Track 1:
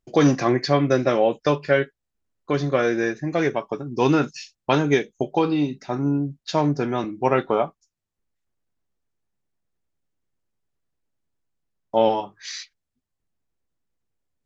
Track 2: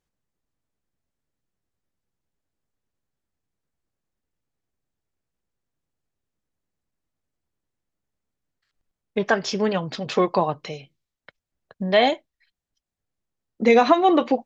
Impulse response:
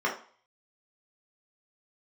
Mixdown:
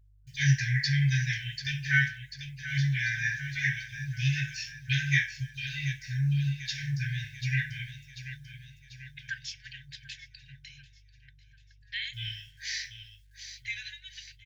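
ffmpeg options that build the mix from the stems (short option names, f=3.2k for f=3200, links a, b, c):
-filter_complex "[0:a]bandreject=f=50:t=h:w=6,bandreject=f=100:t=h:w=6,bandreject=f=150:t=h:w=6,acrusher=bits=9:mix=0:aa=0.000001,adelay=200,volume=-1.5dB,asplit=3[a][b][c];[b]volume=-5dB[d];[c]volume=-9dB[e];[1:a]aeval=exprs='val(0)+0.00398*(sin(2*PI*50*n/s)+sin(2*PI*2*50*n/s)/2+sin(2*PI*3*50*n/s)/3+sin(2*PI*4*50*n/s)/4+sin(2*PI*5*50*n/s)/5)':c=same,volume=-10dB,asplit=2[f][g];[g]volume=-20dB[h];[2:a]atrim=start_sample=2205[i];[d][i]afir=irnorm=-1:irlink=0[j];[e][h]amix=inputs=2:normalize=0,aecho=0:1:741|1482|2223|2964|3705|4446|5187|5928:1|0.53|0.281|0.149|0.0789|0.0418|0.0222|0.0117[k];[a][f][j][k]amix=inputs=4:normalize=0,afftfilt=real='re*(1-between(b*sr/4096,150,1500))':imag='im*(1-between(b*sr/4096,150,1500))':win_size=4096:overlap=0.75,equalizer=f=740:w=1.5:g=-9"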